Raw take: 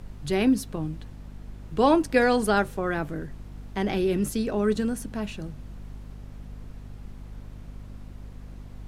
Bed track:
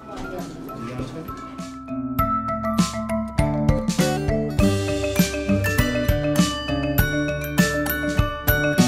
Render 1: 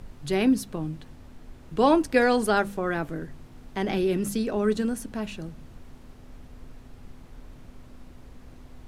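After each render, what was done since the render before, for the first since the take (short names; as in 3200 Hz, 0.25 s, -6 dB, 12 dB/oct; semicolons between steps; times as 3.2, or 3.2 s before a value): de-hum 50 Hz, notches 4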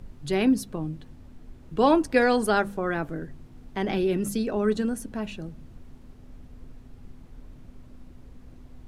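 denoiser 6 dB, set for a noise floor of -48 dBFS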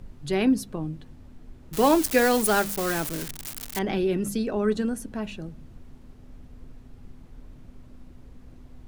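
1.73–3.79 switching spikes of -18.5 dBFS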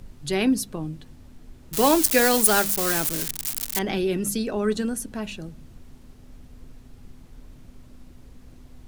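high shelf 3100 Hz +9 dB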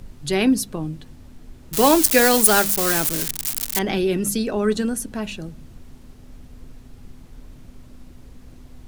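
gain +3.5 dB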